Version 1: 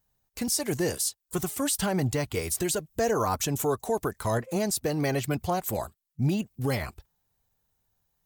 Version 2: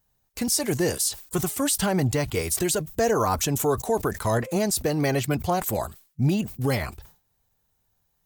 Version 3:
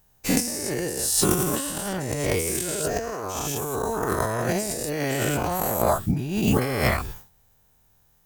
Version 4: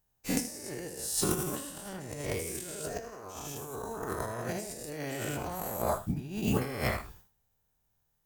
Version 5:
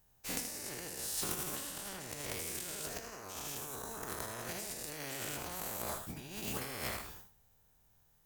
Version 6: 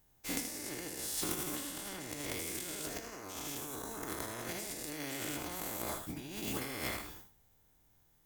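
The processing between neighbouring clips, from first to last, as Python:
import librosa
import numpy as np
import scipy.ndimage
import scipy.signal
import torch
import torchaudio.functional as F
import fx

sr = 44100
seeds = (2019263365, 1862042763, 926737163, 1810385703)

y1 = fx.sustainer(x, sr, db_per_s=150.0)
y1 = F.gain(torch.from_numpy(y1), 3.5).numpy()
y2 = fx.spec_dilate(y1, sr, span_ms=240)
y2 = fx.over_compress(y2, sr, threshold_db=-22.0, ratio=-0.5)
y2 = fx.peak_eq(y2, sr, hz=4200.0, db=-3.5, octaves=0.43)
y2 = F.gain(torch.from_numpy(y2), -1.5).numpy()
y3 = y2 + 10.0 ** (-10.0 / 20.0) * np.pad(y2, (int(78 * sr / 1000.0), 0))[:len(y2)]
y3 = fx.upward_expand(y3, sr, threshold_db=-32.0, expansion=1.5)
y3 = F.gain(torch.from_numpy(y3), -7.5).numpy()
y4 = fx.spectral_comp(y3, sr, ratio=2.0)
y4 = F.gain(torch.from_numpy(y4), -6.0).numpy()
y5 = fx.small_body(y4, sr, hz=(300.0, 2100.0, 3400.0), ring_ms=40, db=9)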